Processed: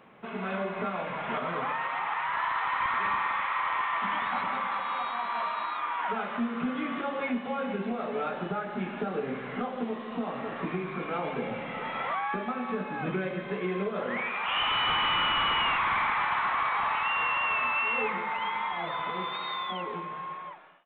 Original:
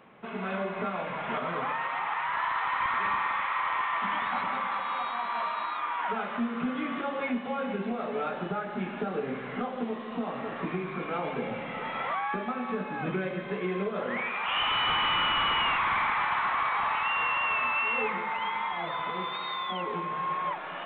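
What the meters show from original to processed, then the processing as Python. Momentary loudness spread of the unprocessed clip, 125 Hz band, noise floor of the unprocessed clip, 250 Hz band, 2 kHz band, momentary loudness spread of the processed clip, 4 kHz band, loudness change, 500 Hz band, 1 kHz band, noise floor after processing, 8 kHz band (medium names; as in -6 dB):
8 LU, 0.0 dB, -38 dBFS, 0.0 dB, 0.0 dB, 9 LU, 0.0 dB, 0.0 dB, 0.0 dB, 0.0 dB, -39 dBFS, no reading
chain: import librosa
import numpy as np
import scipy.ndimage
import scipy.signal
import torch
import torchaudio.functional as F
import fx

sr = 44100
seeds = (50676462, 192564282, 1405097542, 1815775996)

y = fx.fade_out_tail(x, sr, length_s=1.28)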